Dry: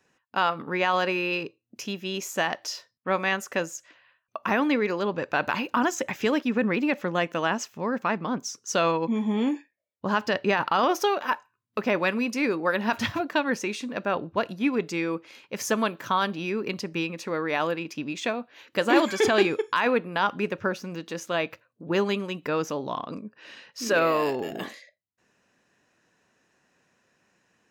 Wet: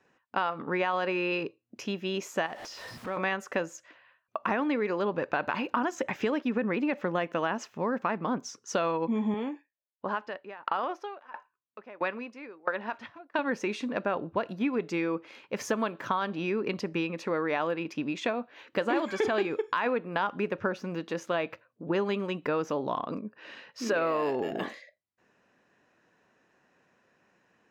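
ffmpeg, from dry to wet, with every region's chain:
ffmpeg -i in.wav -filter_complex "[0:a]asettb=1/sr,asplit=3[link_01][link_02][link_03];[link_01]atrim=end=2.464[link_04];[link_02]atrim=start=2.46:end=3.17,asetpts=PTS-STARTPTS,afade=type=in:duration=0.004:curve=qsin,afade=type=out:start_time=0.706:duration=0.004:curve=qsin,aeval=exprs='val(0)+0.5*0.02*sgn(val(0))':channel_layout=same,acompressor=threshold=-41dB:ratio=2:attack=3.2:release=140:knee=1:detection=peak[link_05];[link_03]atrim=start=3.166[link_06];[link_04][link_05]acrossfade=duration=0.004:curve1=hsin:curve2=qsin[link_07];[link_07][link_06]acrossfade=duration=0.004:curve1=qsin:curve2=hsin,asettb=1/sr,asplit=3[link_08][link_09][link_10];[link_08]atrim=end=9.344[link_11];[link_09]atrim=start=9.34:end=13.39,asetpts=PTS-STARTPTS,afade=type=in:duration=0.004:curve=qsin,afade=type=out:start_time=4.046:duration=0.004:curve=qsin,highpass=frequency=480:poles=1,aemphasis=mode=reproduction:type=50fm,aeval=exprs='val(0)*pow(10,-25*if(lt(mod(1.5*n/s,1),2*abs(1.5)/1000),1-mod(1.5*n/s,1)/(2*abs(1.5)/1000),(mod(1.5*n/s,1)-2*abs(1.5)/1000)/(1-2*abs(1.5)/1000))/20)':channel_layout=same[link_12];[link_10]atrim=start=13.386[link_13];[link_11][link_12]acrossfade=duration=0.004:curve1=hsin:curve2=qsin[link_14];[link_14][link_13]acrossfade=duration=0.004:curve1=qsin:curve2=hsin,lowpass=frequency=1700:poles=1,lowshelf=frequency=200:gain=-6.5,acompressor=threshold=-29dB:ratio=4,volume=3.5dB" out.wav

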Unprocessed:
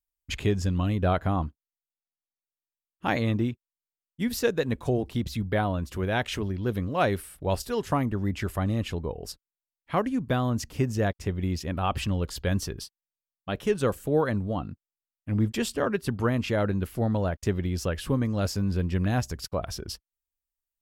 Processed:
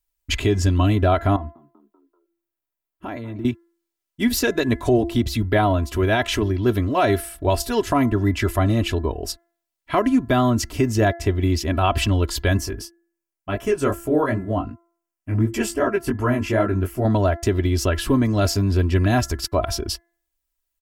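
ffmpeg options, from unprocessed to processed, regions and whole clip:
ffmpeg -i in.wav -filter_complex "[0:a]asettb=1/sr,asplit=3[link_01][link_02][link_03];[link_01]atrim=end=1.364[link_04];[link_02]atrim=start=1.36:end=3.45,asetpts=PTS-STARTPTS,afade=type=in:duration=0.004:curve=qsin,afade=type=out:start_time=2.086:duration=0.004:curve=qsin,equalizer=frequency=5200:width_type=o:width=2.2:gain=-10.5,acompressor=threshold=-36dB:ratio=6:attack=3.2:release=140:knee=1:detection=peak,asplit=5[link_05][link_06][link_07][link_08][link_09];[link_06]adelay=193,afreqshift=66,volume=-19dB[link_10];[link_07]adelay=386,afreqshift=132,volume=-24.8dB[link_11];[link_08]adelay=579,afreqshift=198,volume=-30.7dB[link_12];[link_09]adelay=772,afreqshift=264,volume=-36.5dB[link_13];[link_05][link_10][link_11][link_12][link_13]amix=inputs=5:normalize=0,atrim=end_sample=92169[link_14];[link_03]atrim=start=3.446[link_15];[link_04][link_14]acrossfade=duration=0.004:curve1=hsin:curve2=qsin[link_16];[link_16][link_15]acrossfade=duration=0.004:curve1=qsin:curve2=hsin,asettb=1/sr,asplit=3[link_17][link_18][link_19];[link_17]atrim=end=12.574[link_20];[link_18]atrim=start=12.57:end=17.05,asetpts=PTS-STARTPTS,afade=type=in:duration=0.004:curve=qsin,afade=type=out:start_time=4.476:duration=0.004:curve=qsin,equalizer=frequency=3800:width=2.8:gain=-12.5,flanger=delay=15.5:depth=5.8:speed=2.7[link_21];[link_19]atrim=start=17.046[link_22];[link_20][link_21]acrossfade=duration=0.004:curve1=hsin:curve2=qsin[link_23];[link_23][link_22]acrossfade=duration=0.004:curve1=qsin:curve2=hsin,aecho=1:1:3:0.73,bandreject=frequency=340.3:width_type=h:width=4,bandreject=frequency=680.6:width_type=h:width=4,bandreject=frequency=1020.9:width_type=h:width=4,bandreject=frequency=1361.2:width_type=h:width=4,bandreject=frequency=1701.5:width_type=h:width=4,bandreject=frequency=2041.8:width_type=h:width=4,alimiter=level_in=16dB:limit=-1dB:release=50:level=0:latency=1,volume=-8dB" out.wav

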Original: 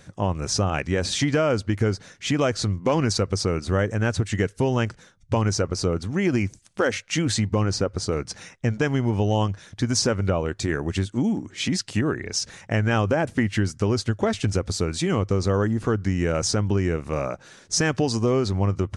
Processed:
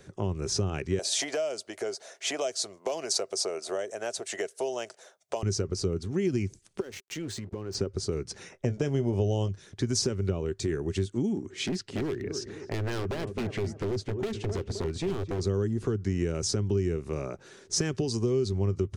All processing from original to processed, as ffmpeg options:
ffmpeg -i in.wav -filter_complex "[0:a]asettb=1/sr,asplit=3[link_01][link_02][link_03];[link_01]atrim=end=0.994[link_04];[link_02]atrim=start=0.99:end=5.43,asetpts=PTS-STARTPTS,afade=type=in:duration=0.004:curve=qsin,afade=type=out:start_time=4.436:duration=0.004:curve=qsin,highpass=frequency=650:width_type=q:width=7.8,highshelf=frequency=6700:gain=11.5[link_05];[link_03]atrim=start=5.426[link_06];[link_04][link_05]acrossfade=duration=0.004:curve1=hsin:curve2=qsin[link_07];[link_07][link_06]acrossfade=duration=0.004:curve1=qsin:curve2=hsin,asettb=1/sr,asplit=3[link_08][link_09][link_10];[link_08]atrim=end=6.804[link_11];[link_09]atrim=start=6.8:end=7.75,asetpts=PTS-STARTPTS,afade=type=in:duration=0.004:curve=qsin,afade=type=out:start_time=0.946:duration=0.004:curve=qsin,aeval=exprs='sgn(val(0))*max(abs(val(0))-0.0133,0)':channel_layout=same,acompressor=threshold=-28dB:ratio=16:attack=3.2:release=140:knee=1:detection=peak[link_12];[link_10]atrim=start=7.746[link_13];[link_11][link_12]acrossfade=duration=0.004:curve1=hsin:curve2=qsin[link_14];[link_14][link_13]acrossfade=duration=0.004:curve1=qsin:curve2=hsin,asettb=1/sr,asplit=3[link_15][link_16][link_17];[link_15]atrim=end=8.524[link_18];[link_16]atrim=start=8.52:end=9.49,asetpts=PTS-STARTPTS,afade=type=in:duration=0.004:curve=qsin,afade=type=out:start_time=0.966:duration=0.004:curve=qsin,equalizer=frequency=610:width_type=o:width=0.72:gain=12.5,bandreject=frequency=4100:width=11,asplit=2[link_19][link_20];[link_20]adelay=21,volume=-12.5dB[link_21];[link_19][link_21]amix=inputs=2:normalize=0,atrim=end_sample=42777[link_22];[link_17]atrim=start=9.486[link_23];[link_18][link_22]acrossfade=duration=0.004:curve1=hsin:curve2=qsin[link_24];[link_24][link_23]acrossfade=duration=0.004:curve1=qsin:curve2=hsin,asettb=1/sr,asplit=3[link_25][link_26][link_27];[link_25]atrim=end=11.664[link_28];[link_26]atrim=start=11.66:end=15.41,asetpts=PTS-STARTPTS,afade=type=in:duration=0.004:curve=qsin,afade=type=out:start_time=3.746:duration=0.004:curve=qsin,lowpass=frequency=2800:poles=1,asplit=2[link_29][link_30];[link_30]adelay=260,lowpass=frequency=1400:poles=1,volume=-12dB,asplit=2[link_31][link_32];[link_32]adelay=260,lowpass=frequency=1400:poles=1,volume=0.38,asplit=2[link_33][link_34];[link_34]adelay=260,lowpass=frequency=1400:poles=1,volume=0.38,asplit=2[link_35][link_36];[link_36]adelay=260,lowpass=frequency=1400:poles=1,volume=0.38[link_37];[link_29][link_31][link_33][link_35][link_37]amix=inputs=5:normalize=0,atrim=end_sample=165375,aeval=exprs='0.1*(abs(mod(val(0)/0.1+3,4)-2)-1)':channel_layout=same[link_38];[link_27]atrim=start=15.406[link_39];[link_28][link_38]acrossfade=duration=0.004:curve1=hsin:curve2=qsin[link_40];[link_40][link_39]acrossfade=duration=0.004:curve1=qsin:curve2=hsin,equalizer=frequency=390:width_type=o:width=0.38:gain=14.5,acrossover=split=240|3000[link_41][link_42][link_43];[link_42]acompressor=threshold=-28dB:ratio=5[link_44];[link_41][link_44][link_43]amix=inputs=3:normalize=0,volume=-5dB" out.wav

